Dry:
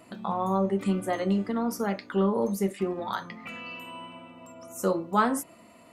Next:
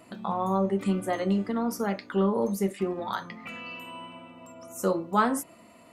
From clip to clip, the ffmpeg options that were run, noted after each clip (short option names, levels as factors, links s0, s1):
-af anull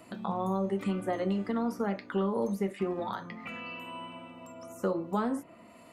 -filter_complex "[0:a]acrossover=split=610|3100[s0][s1][s2];[s0]acompressor=threshold=0.0398:ratio=4[s3];[s1]acompressor=threshold=0.0158:ratio=4[s4];[s2]acompressor=threshold=0.00141:ratio=4[s5];[s3][s4][s5]amix=inputs=3:normalize=0"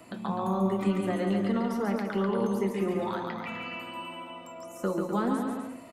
-filter_complex "[0:a]acrossover=split=390|970[s0][s1][s2];[s1]alimiter=level_in=2.82:limit=0.0631:level=0:latency=1,volume=0.355[s3];[s0][s3][s2]amix=inputs=3:normalize=0,aecho=1:1:140|252|341.6|413.3|470.6:0.631|0.398|0.251|0.158|0.1,volume=1.26"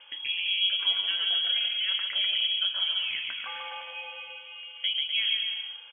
-af "lowpass=f=3000:t=q:w=0.5098,lowpass=f=3000:t=q:w=0.6013,lowpass=f=3000:t=q:w=0.9,lowpass=f=3000:t=q:w=2.563,afreqshift=-3500"